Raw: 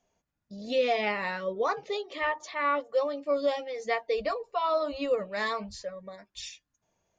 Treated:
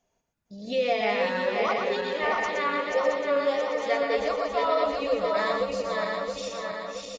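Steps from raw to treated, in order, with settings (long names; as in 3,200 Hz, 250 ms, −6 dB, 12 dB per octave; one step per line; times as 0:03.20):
feedback delay that plays each chunk backwards 336 ms, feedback 74%, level −3 dB
single-tap delay 119 ms −5.5 dB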